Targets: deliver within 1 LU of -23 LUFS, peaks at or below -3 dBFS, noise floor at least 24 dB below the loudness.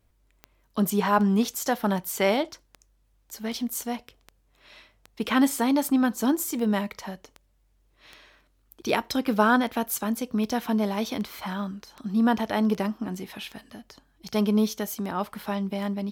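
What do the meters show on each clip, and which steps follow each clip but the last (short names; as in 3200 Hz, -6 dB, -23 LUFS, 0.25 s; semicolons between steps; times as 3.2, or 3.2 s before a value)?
clicks 21; loudness -26.0 LUFS; peak -7.5 dBFS; loudness target -23.0 LUFS
-> de-click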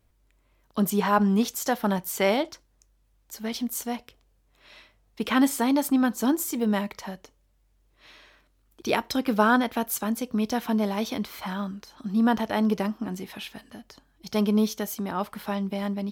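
clicks 0; loudness -26.0 LUFS; peak -7.5 dBFS; loudness target -23.0 LUFS
-> gain +3 dB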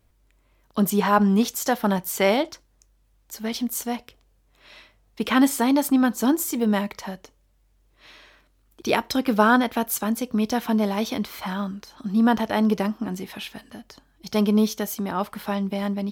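loudness -23.0 LUFS; peak -4.5 dBFS; noise floor -63 dBFS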